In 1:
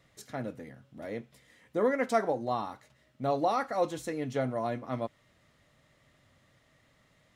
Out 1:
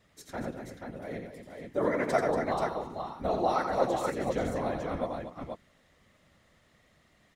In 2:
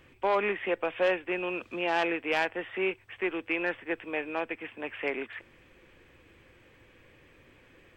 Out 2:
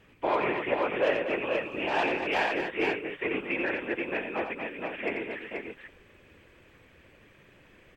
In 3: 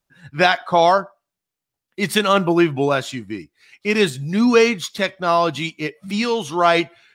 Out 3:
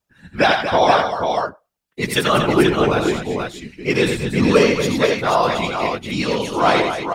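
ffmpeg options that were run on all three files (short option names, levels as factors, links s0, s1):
-af "afftfilt=real='hypot(re,im)*cos(2*PI*random(0))':imag='hypot(re,im)*sin(2*PI*random(1))':win_size=512:overlap=0.75,aecho=1:1:87|235|482:0.501|0.355|0.562,volume=1.78"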